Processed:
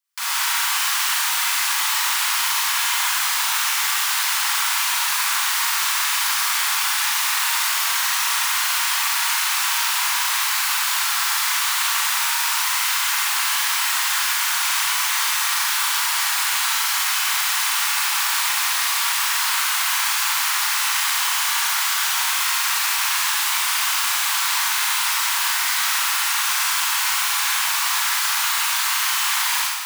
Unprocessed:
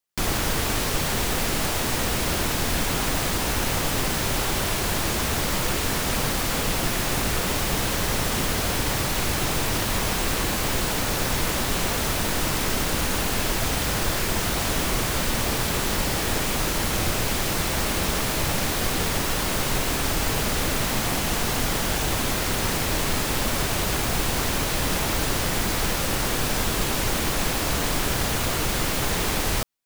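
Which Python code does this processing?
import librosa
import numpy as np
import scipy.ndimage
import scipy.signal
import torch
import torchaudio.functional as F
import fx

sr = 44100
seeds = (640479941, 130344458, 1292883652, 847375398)

y = scipy.signal.sosfilt(scipy.signal.butter(8, 910.0, 'highpass', fs=sr, output='sos'), x)
y = fx.rev_schroeder(y, sr, rt60_s=1.5, comb_ms=33, drr_db=-6.0)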